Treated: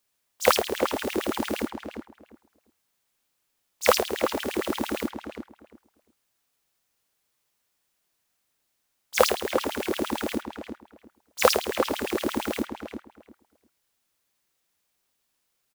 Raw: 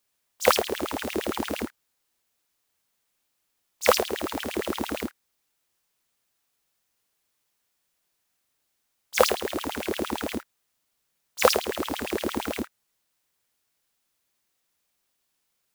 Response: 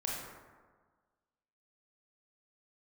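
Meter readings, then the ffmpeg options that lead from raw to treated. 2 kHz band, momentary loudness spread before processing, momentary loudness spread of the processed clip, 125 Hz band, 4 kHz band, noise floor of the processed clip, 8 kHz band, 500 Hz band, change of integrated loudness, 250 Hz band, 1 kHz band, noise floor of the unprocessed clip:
+0.5 dB, 12 LU, 18 LU, −0.5 dB, 0.0 dB, −76 dBFS, 0.0 dB, +1.0 dB, +0.5 dB, +2.0 dB, +0.5 dB, −76 dBFS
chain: -filter_complex "[0:a]asplit=2[link_01][link_02];[link_02]adelay=349,lowpass=frequency=2100:poles=1,volume=-7dB,asplit=2[link_03][link_04];[link_04]adelay=349,lowpass=frequency=2100:poles=1,volume=0.19,asplit=2[link_05][link_06];[link_06]adelay=349,lowpass=frequency=2100:poles=1,volume=0.19[link_07];[link_01][link_03][link_05][link_07]amix=inputs=4:normalize=0"

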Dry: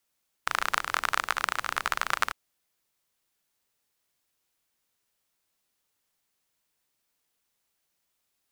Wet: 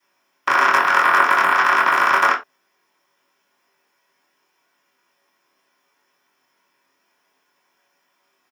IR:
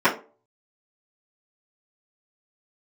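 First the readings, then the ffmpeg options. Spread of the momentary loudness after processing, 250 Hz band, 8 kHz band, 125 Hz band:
5 LU, +16.5 dB, +2.5 dB, can't be measured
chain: -filter_complex "[0:a]bass=frequency=250:gain=-7,treble=frequency=4000:gain=6,acrossover=split=600|6900[link_01][link_02][link_03];[link_02]alimiter=limit=-16dB:level=0:latency=1:release=72[link_04];[link_03]aeval=exprs='val(0)*sin(2*PI*260*n/s)':channel_layout=same[link_05];[link_01][link_04][link_05]amix=inputs=3:normalize=0,asplit=2[link_06][link_07];[link_07]adelay=23,volume=-3dB[link_08];[link_06][link_08]amix=inputs=2:normalize=0[link_09];[1:a]atrim=start_sample=2205,atrim=end_sample=4410[link_10];[link_09][link_10]afir=irnorm=-1:irlink=0,volume=-4dB"

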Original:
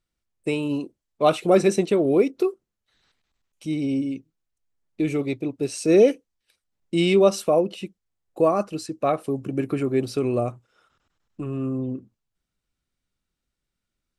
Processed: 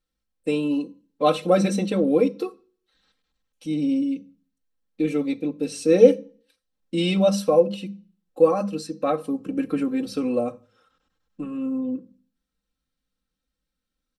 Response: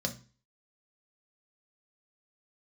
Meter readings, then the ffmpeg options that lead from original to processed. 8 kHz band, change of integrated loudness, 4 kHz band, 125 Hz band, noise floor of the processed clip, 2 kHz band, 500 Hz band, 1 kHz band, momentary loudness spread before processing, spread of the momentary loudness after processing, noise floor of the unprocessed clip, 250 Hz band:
−2.0 dB, 0.0 dB, 0.0 dB, −2.0 dB, −83 dBFS, −2.5 dB, 0.0 dB, −1.0 dB, 14 LU, 14 LU, −83 dBFS, +1.0 dB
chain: -filter_complex "[0:a]aecho=1:1:3.8:0.92,asplit=2[link_01][link_02];[1:a]atrim=start_sample=2205,asetrate=37926,aresample=44100[link_03];[link_02][link_03]afir=irnorm=-1:irlink=0,volume=-9.5dB[link_04];[link_01][link_04]amix=inputs=2:normalize=0,volume=-6.5dB"

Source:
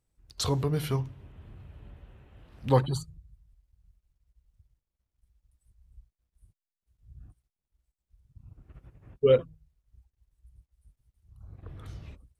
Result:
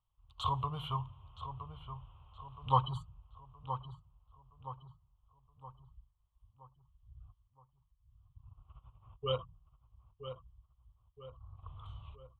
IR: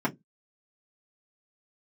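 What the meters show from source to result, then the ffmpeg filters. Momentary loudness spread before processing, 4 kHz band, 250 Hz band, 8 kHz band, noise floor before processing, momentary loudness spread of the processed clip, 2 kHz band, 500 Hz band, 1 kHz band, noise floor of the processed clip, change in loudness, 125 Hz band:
22 LU, −4.0 dB, −13.5 dB, below −20 dB, below −85 dBFS, 23 LU, −13.0 dB, −15.5 dB, +3.0 dB, −76 dBFS, −12.0 dB, −8.0 dB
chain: -filter_complex "[0:a]firequalizer=gain_entry='entry(110,0);entry(200,-16);entry(300,-19);entry(1100,14);entry(1700,-23);entry(3100,8);entry(5100,-29);entry(7300,-16);entry(11000,-21)':delay=0.05:min_phase=1,asplit=2[link_01][link_02];[link_02]adelay=970,lowpass=frequency=2300:poles=1,volume=-10dB,asplit=2[link_03][link_04];[link_04]adelay=970,lowpass=frequency=2300:poles=1,volume=0.49,asplit=2[link_05][link_06];[link_06]adelay=970,lowpass=frequency=2300:poles=1,volume=0.49,asplit=2[link_07][link_08];[link_08]adelay=970,lowpass=frequency=2300:poles=1,volume=0.49,asplit=2[link_09][link_10];[link_10]adelay=970,lowpass=frequency=2300:poles=1,volume=0.49[link_11];[link_01][link_03][link_05][link_07][link_09][link_11]amix=inputs=6:normalize=0,volume=-5dB"

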